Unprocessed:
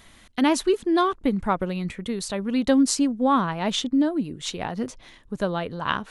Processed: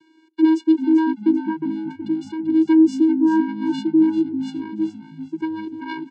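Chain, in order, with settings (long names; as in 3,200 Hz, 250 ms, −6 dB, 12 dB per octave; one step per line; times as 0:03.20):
notch filter 1,300 Hz, Q 15
hollow resonant body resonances 240/1,600/3,000 Hz, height 10 dB
channel vocoder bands 8, square 319 Hz
echo with shifted repeats 390 ms, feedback 34%, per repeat −54 Hz, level −11 dB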